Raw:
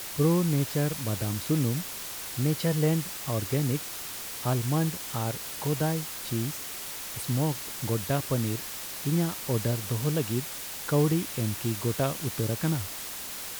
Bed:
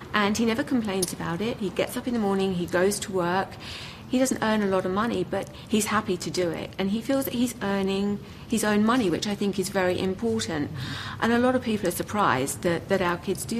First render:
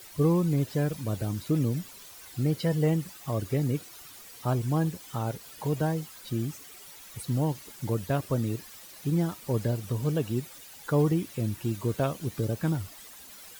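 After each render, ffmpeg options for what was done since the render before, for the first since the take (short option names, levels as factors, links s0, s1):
-af "afftdn=nr=13:nf=-38"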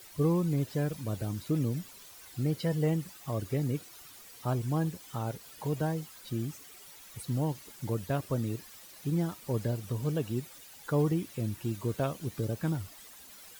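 -af "volume=0.668"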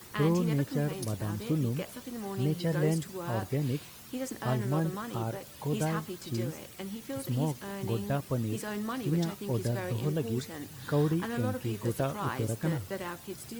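-filter_complex "[1:a]volume=0.211[s0];[0:a][s0]amix=inputs=2:normalize=0"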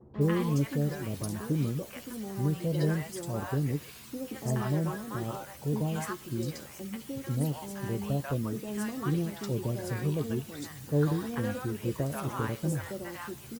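-filter_complex "[0:a]asplit=2[s0][s1];[s1]adelay=14,volume=0.299[s2];[s0][s2]amix=inputs=2:normalize=0,acrossover=split=720|3400[s3][s4][s5];[s4]adelay=140[s6];[s5]adelay=210[s7];[s3][s6][s7]amix=inputs=3:normalize=0"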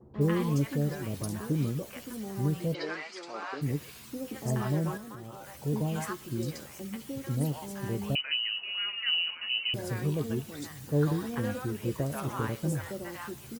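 -filter_complex "[0:a]asplit=3[s0][s1][s2];[s0]afade=t=out:st=2.73:d=0.02[s3];[s1]highpass=f=340:w=0.5412,highpass=f=340:w=1.3066,equalizer=f=390:t=q:w=4:g=-5,equalizer=f=560:t=q:w=4:g=-5,equalizer=f=1300:t=q:w=4:g=7,equalizer=f=2300:t=q:w=4:g=10,equalizer=f=4500:t=q:w=4:g=6,lowpass=f=5700:w=0.5412,lowpass=f=5700:w=1.3066,afade=t=in:st=2.73:d=0.02,afade=t=out:st=3.61:d=0.02[s4];[s2]afade=t=in:st=3.61:d=0.02[s5];[s3][s4][s5]amix=inputs=3:normalize=0,asettb=1/sr,asplit=3[s6][s7][s8];[s6]atrim=end=4.974[s9];[s7]atrim=start=4.97:end=5.6,asetpts=PTS-STARTPTS,afade=t=in:d=0.004:c=qsin,afade=t=out:st=0.626:d=0.004:c=qsin,acompressor=threshold=0.01:ratio=6:attack=3.2:release=140:knee=1:detection=peak[s10];[s8]atrim=start=5.596[s11];[s9][s10]acrossfade=d=0.004:c1=hsin:c2=qsin[s12];[s12][s11]acrossfade=d=0.004:c1=qsin:c2=hsin,asettb=1/sr,asplit=3[s13][s14][s15];[s13]atrim=end=8.154[s16];[s14]atrim=start=8.15:end=9.74,asetpts=PTS-STARTPTS,afade=t=in:d=0.004:c=qsin,afade=t=out:st=1.586:d=0.004:c=qsin,lowpass=f=2600:t=q:w=0.5098,lowpass=f=2600:t=q:w=0.6013,lowpass=f=2600:t=q:w=0.9,lowpass=f=2600:t=q:w=2.563,afreqshift=-3100[s17];[s15]atrim=start=9.736[s18];[s16][s17]acrossfade=d=0.004:c1=hsin:c2=qsin[s19];[s19][s18]acrossfade=d=0.004:c1=qsin:c2=hsin"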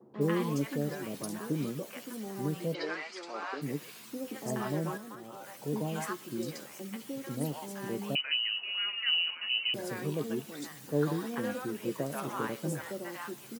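-af "highpass=f=160:w=0.5412,highpass=f=160:w=1.3066,bass=f=250:g=-3,treble=f=4000:g=-1"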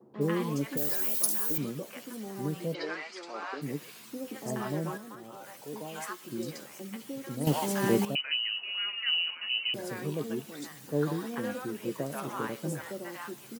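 -filter_complex "[0:a]asettb=1/sr,asplit=3[s0][s1][s2];[s0]atrim=end=0.774[s3];[s1]atrim=start=0.77:end=1.58,asetpts=PTS-STARTPTS,afade=t=in:d=0.004:c=qsin,afade=t=out:st=0.806:d=0.004:c=qsin,aemphasis=mode=production:type=riaa[s4];[s2]atrim=start=1.576[s5];[s3][s4]acrossfade=d=0.004:c1=hsin:c2=qsin[s6];[s6][s5]acrossfade=d=0.004:c1=qsin:c2=hsin,asettb=1/sr,asplit=3[s7][s8][s9];[s7]atrim=end=5.614[s10];[s8]atrim=start=5.61:end=6.24,asetpts=PTS-STARTPTS,afade=t=in:d=0.004:c=qsin,afade=t=out:st=0.626:d=0.004:c=qsin,highpass=f=650:p=1[s11];[s9]atrim=start=6.236[s12];[s10][s11]acrossfade=d=0.004:c1=hsin:c2=qsin[s13];[s13][s12]acrossfade=d=0.004:c1=qsin:c2=hsin,asplit=3[s14][s15][s16];[s14]atrim=end=7.472[s17];[s15]atrim=start=7.468:end=8.052,asetpts=PTS-STARTPTS,volume=3.55[s18];[s16]atrim=start=8.048[s19];[s17][s18]acrossfade=d=0.004:c1=hsin:c2=hsin[s20];[s20][s19]acrossfade=d=0.004:c1=hsin:c2=hsin"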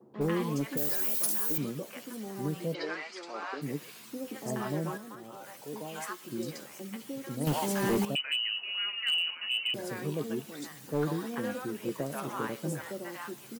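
-af "asoftclip=type=hard:threshold=0.0708"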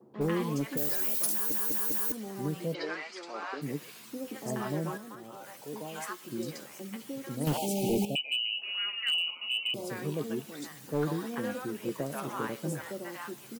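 -filter_complex "[0:a]asettb=1/sr,asplit=3[s0][s1][s2];[s0]atrim=end=7.574[s3];[s1]atrim=start=7.57:end=8.62,asetpts=PTS-STARTPTS,afade=t=in:d=0.004:c=qsin,afade=t=out:st=1.046:d=0.004:c=qsin,asuperstop=centerf=1400:order=20:qfactor=1[s4];[s2]atrim=start=8.616[s5];[s3][s4]acrossfade=d=0.004:c1=hsin:c2=qsin[s6];[s6][s5]acrossfade=d=0.004:c1=qsin:c2=hsin,asettb=1/sr,asplit=3[s7][s8][s9];[s7]atrim=end=9.124[s10];[s8]atrim=start=9.12:end=9.9,asetpts=PTS-STARTPTS,afade=t=in:d=0.004:c=qsin,afade=t=out:st=0.776:d=0.004:c=qsin,asuperstop=centerf=1700:order=4:qfactor=1.6[s11];[s9]atrim=start=9.896[s12];[s10][s11]acrossfade=d=0.004:c1=hsin:c2=qsin[s13];[s13][s12]acrossfade=d=0.004:c1=qsin:c2=hsin,asplit=5[s14][s15][s16][s17][s18];[s14]atrim=end=1.522[s19];[s15]atrim=start=1.318:end=1.522[s20];[s16]atrim=start=1.318:end=1.522[s21];[s17]atrim=start=1.318:end=1.522[s22];[s18]atrim=start=2.118[s23];[s19][s20]acrossfade=d=0.004:c1=hsin:c2=hsin[s24];[s24][s21]acrossfade=d=0.004:c1=hsin:c2=hsin[s25];[s25][s22]acrossfade=d=0.004:c1=hsin:c2=hsin[s26];[s26][s23]acrossfade=d=0.004:c1=hsin:c2=hsin"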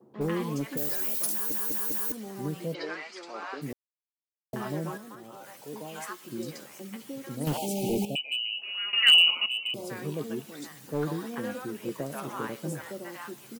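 -filter_complex "[0:a]asplit=5[s0][s1][s2][s3][s4];[s0]atrim=end=3.73,asetpts=PTS-STARTPTS,afade=t=out:st=3.726:d=0.004:c=hsin[s5];[s1]atrim=start=3.73:end=4.53,asetpts=PTS-STARTPTS,volume=0[s6];[s2]atrim=start=4.53:end=8.932,asetpts=PTS-STARTPTS,afade=t=in:d=0.004:c=hsin[s7];[s3]atrim=start=8.928:end=9.462,asetpts=PTS-STARTPTS,volume=3.98[s8];[s4]atrim=start=9.458[s9];[s5][s6][s7]concat=n=3:v=0:a=1[s10];[s10][s8]acrossfade=d=0.004:c1=hsin:c2=hsin[s11];[s11][s9]acrossfade=d=0.004:c1=hsin:c2=hsin"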